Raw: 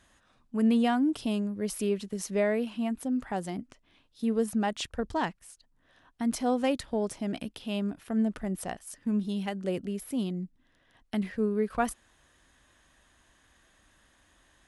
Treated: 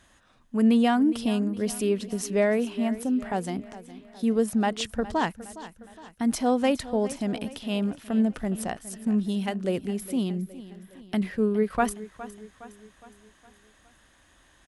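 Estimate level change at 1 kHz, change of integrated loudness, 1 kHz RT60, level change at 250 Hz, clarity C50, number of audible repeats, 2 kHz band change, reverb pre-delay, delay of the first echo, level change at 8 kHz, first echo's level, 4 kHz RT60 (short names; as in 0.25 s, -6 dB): +4.0 dB, +4.0 dB, none, +4.0 dB, none, 4, +4.0 dB, none, 0.413 s, +4.0 dB, -16.0 dB, none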